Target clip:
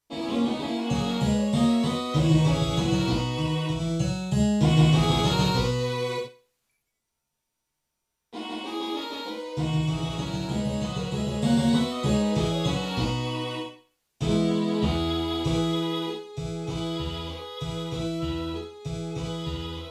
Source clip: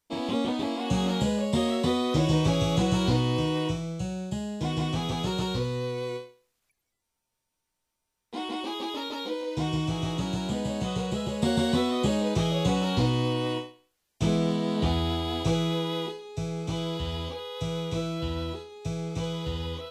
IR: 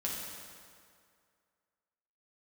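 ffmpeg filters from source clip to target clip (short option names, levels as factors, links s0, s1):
-filter_complex "[0:a]asettb=1/sr,asplit=3[s0][s1][s2];[s0]atrim=end=3.804[s3];[s1]atrim=start=3.8:end=6.18,asetpts=PTS-STARTPTS,afade=t=in:d=0.004:c=qsin,afade=t=out:st=2.376:d=0.004:c=qsin,acontrast=86[s4];[s2]atrim=start=6.176[s5];[s3][s4]acrossfade=d=0.004:c1=hsin:c2=qsin[s6];[s6][s5]acrossfade=d=0.004:c1=qsin:c2=hsin[s7];[1:a]atrim=start_sample=2205,atrim=end_sample=3528,asetrate=32634,aresample=44100[s8];[s7][s8]afir=irnorm=-1:irlink=0,volume=0.75"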